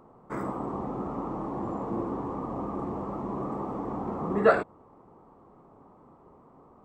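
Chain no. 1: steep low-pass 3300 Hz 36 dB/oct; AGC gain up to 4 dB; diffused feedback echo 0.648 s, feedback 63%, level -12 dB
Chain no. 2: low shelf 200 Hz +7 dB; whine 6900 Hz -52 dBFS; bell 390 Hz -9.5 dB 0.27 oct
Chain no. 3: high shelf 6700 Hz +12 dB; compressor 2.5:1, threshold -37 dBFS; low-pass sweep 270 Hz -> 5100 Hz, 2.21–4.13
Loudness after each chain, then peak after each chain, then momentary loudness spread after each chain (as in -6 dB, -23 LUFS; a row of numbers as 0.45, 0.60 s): -28.0, -30.5, -36.5 LUFS; -4.5, -8.0, -20.5 dBFS; 17, 25, 20 LU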